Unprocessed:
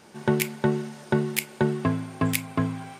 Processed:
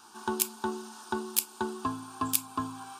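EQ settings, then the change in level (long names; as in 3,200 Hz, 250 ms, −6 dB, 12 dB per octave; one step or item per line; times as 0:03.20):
dynamic equaliser 1,700 Hz, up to −7 dB, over −43 dBFS, Q 0.78
low shelf with overshoot 770 Hz −10 dB, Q 1.5
phaser with its sweep stopped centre 550 Hz, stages 6
+3.5 dB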